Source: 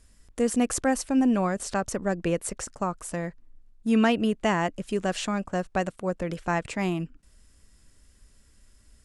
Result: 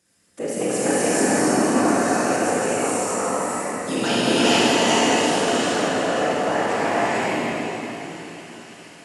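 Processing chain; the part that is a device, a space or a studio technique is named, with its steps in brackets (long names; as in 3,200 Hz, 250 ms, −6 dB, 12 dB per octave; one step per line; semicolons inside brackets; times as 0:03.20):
0:03.26–0:04.92: high shelf with overshoot 2,800 Hz +11.5 dB, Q 1.5
delay with a high-pass on its return 520 ms, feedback 78%, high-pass 1,700 Hz, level −16.5 dB
whispering ghost (random phases in short frames; high-pass filter 290 Hz 12 dB per octave; convolution reverb RT60 3.8 s, pre-delay 28 ms, DRR −6.5 dB)
reverb whose tail is shaped and stops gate 480 ms rising, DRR −4.5 dB
level −3.5 dB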